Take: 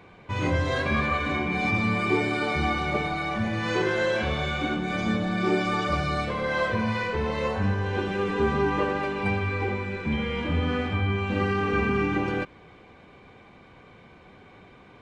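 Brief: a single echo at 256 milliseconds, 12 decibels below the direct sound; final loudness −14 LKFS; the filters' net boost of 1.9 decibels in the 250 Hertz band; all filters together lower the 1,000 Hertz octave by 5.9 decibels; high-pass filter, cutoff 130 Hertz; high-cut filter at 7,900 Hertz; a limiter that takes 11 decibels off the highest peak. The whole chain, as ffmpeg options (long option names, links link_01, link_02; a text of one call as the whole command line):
ffmpeg -i in.wav -af "highpass=130,lowpass=7900,equalizer=frequency=250:width_type=o:gain=3.5,equalizer=frequency=1000:width_type=o:gain=-8,alimiter=limit=-23dB:level=0:latency=1,aecho=1:1:256:0.251,volume=17dB" out.wav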